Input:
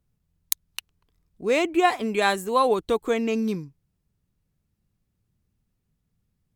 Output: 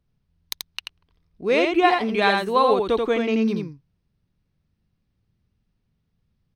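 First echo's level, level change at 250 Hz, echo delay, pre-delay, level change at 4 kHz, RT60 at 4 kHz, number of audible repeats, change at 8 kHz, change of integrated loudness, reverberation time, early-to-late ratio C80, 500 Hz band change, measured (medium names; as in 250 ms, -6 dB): -4.0 dB, +3.0 dB, 85 ms, no reverb, +3.5 dB, no reverb, 1, no reading, +3.5 dB, no reverb, no reverb, +3.0 dB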